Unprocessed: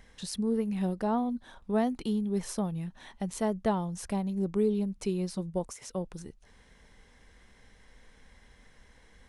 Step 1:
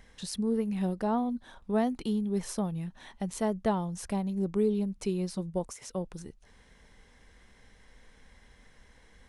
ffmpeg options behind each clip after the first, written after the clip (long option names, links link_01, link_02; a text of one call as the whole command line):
ffmpeg -i in.wav -af anull out.wav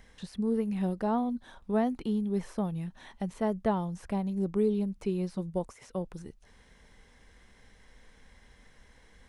ffmpeg -i in.wav -filter_complex "[0:a]acrossover=split=2700[link_01][link_02];[link_02]acompressor=threshold=-54dB:ratio=4:attack=1:release=60[link_03];[link_01][link_03]amix=inputs=2:normalize=0" out.wav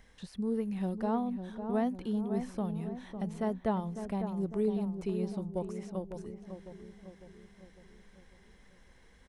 ffmpeg -i in.wav -filter_complex "[0:a]asplit=2[link_01][link_02];[link_02]adelay=552,lowpass=frequency=1300:poles=1,volume=-8dB,asplit=2[link_03][link_04];[link_04]adelay=552,lowpass=frequency=1300:poles=1,volume=0.55,asplit=2[link_05][link_06];[link_06]adelay=552,lowpass=frequency=1300:poles=1,volume=0.55,asplit=2[link_07][link_08];[link_08]adelay=552,lowpass=frequency=1300:poles=1,volume=0.55,asplit=2[link_09][link_10];[link_10]adelay=552,lowpass=frequency=1300:poles=1,volume=0.55,asplit=2[link_11][link_12];[link_12]adelay=552,lowpass=frequency=1300:poles=1,volume=0.55,asplit=2[link_13][link_14];[link_14]adelay=552,lowpass=frequency=1300:poles=1,volume=0.55[link_15];[link_01][link_03][link_05][link_07][link_09][link_11][link_13][link_15]amix=inputs=8:normalize=0,volume=-3.5dB" out.wav